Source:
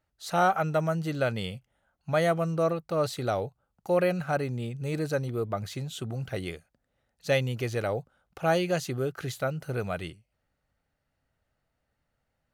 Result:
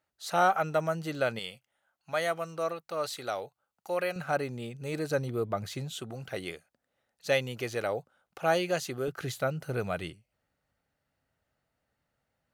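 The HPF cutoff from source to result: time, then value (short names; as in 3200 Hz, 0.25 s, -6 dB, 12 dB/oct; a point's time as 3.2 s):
HPF 6 dB/oct
320 Hz
from 1.39 s 1000 Hz
from 4.16 s 290 Hz
from 5.11 s 120 Hz
from 5.95 s 350 Hz
from 9.08 s 100 Hz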